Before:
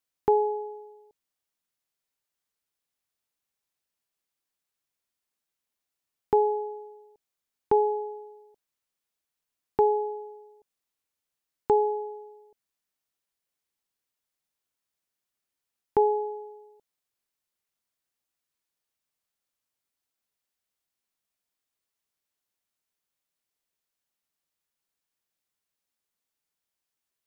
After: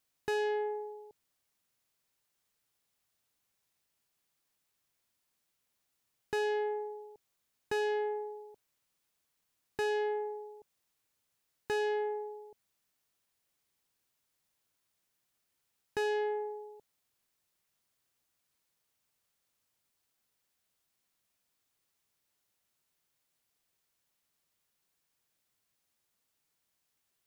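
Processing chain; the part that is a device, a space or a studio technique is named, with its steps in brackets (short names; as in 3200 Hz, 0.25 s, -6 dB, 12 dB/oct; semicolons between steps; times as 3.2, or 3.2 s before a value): open-reel tape (soft clip -34 dBFS, distortion -3 dB; bell 120 Hz +5 dB 1.08 oct; white noise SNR 47 dB); gain +4.5 dB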